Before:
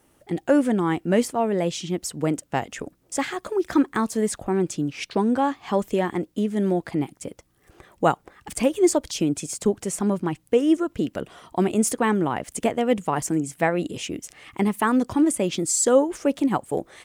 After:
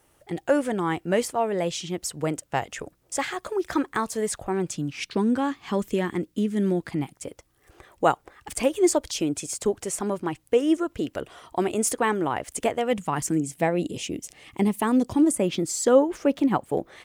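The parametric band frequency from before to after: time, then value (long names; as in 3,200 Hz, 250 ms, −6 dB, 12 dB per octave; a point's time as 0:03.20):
parametric band −8.5 dB 0.99 octaves
0:04.54 240 Hz
0:05.17 720 Hz
0:06.85 720 Hz
0:07.25 190 Hz
0:12.71 190 Hz
0:13.54 1,400 Hz
0:15.18 1,400 Hz
0:15.58 8,700 Hz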